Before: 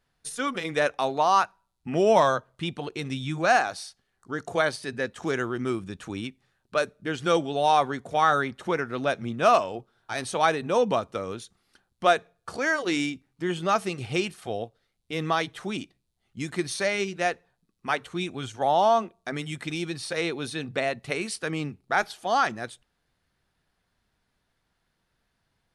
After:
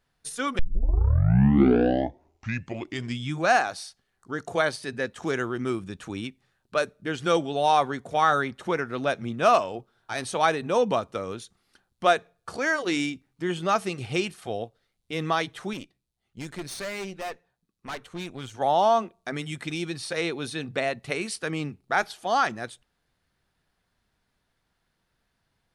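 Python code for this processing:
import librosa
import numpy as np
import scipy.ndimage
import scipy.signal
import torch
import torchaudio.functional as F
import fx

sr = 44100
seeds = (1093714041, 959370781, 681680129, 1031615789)

y = fx.tube_stage(x, sr, drive_db=30.0, bias=0.75, at=(15.73, 18.52))
y = fx.edit(y, sr, fx.tape_start(start_s=0.59, length_s=2.79), tone=tone)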